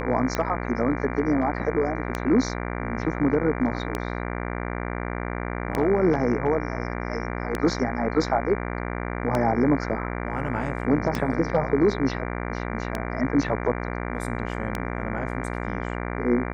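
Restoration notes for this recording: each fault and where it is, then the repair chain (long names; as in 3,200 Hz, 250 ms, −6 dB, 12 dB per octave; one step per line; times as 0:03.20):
mains buzz 60 Hz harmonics 39 −30 dBFS
scratch tick 33 1/3 rpm −11 dBFS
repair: click removal
hum removal 60 Hz, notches 39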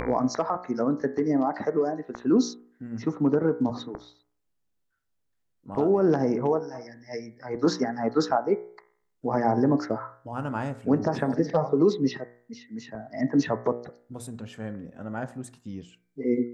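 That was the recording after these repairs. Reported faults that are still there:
none of them is left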